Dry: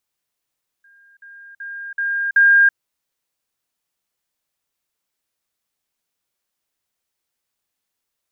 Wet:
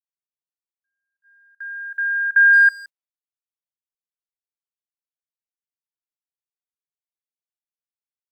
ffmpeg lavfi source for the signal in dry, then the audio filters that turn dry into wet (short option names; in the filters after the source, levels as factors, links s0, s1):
-f lavfi -i "aevalsrc='pow(10,(-48.5+10*floor(t/0.38))/20)*sin(2*PI*1610*t)*clip(min(mod(t,0.38),0.33-mod(t,0.38))/0.005,0,1)':d=1.9:s=44100"
-filter_complex "[0:a]agate=range=0.0251:threshold=0.01:ratio=16:detection=peak,asplit=2[s0][s1];[s1]adelay=170,highpass=300,lowpass=3400,asoftclip=type=hard:threshold=0.126,volume=0.126[s2];[s0][s2]amix=inputs=2:normalize=0"